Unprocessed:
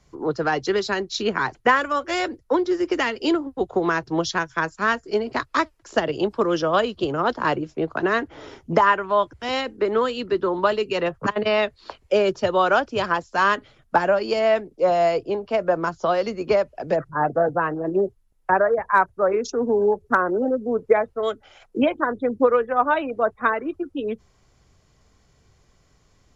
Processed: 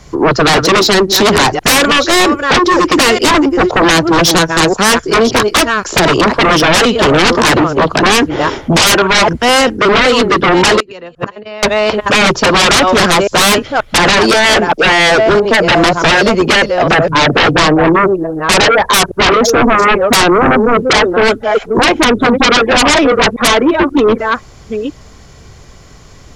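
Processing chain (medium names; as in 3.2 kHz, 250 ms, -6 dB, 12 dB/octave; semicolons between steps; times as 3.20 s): chunks repeated in reverse 531 ms, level -13 dB; 10.80–11.63 s: inverted gate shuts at -22 dBFS, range -28 dB; sine folder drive 18 dB, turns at -5 dBFS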